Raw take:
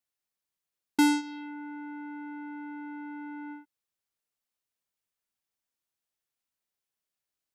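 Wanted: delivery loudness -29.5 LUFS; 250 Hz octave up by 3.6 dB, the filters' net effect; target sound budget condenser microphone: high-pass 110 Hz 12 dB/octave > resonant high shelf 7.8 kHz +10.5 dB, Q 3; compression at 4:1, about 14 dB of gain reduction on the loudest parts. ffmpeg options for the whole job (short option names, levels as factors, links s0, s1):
-af "equalizer=f=250:t=o:g=4.5,acompressor=threshold=0.02:ratio=4,highpass=110,highshelf=f=7800:t=q:w=3:g=10.5,volume=2.66"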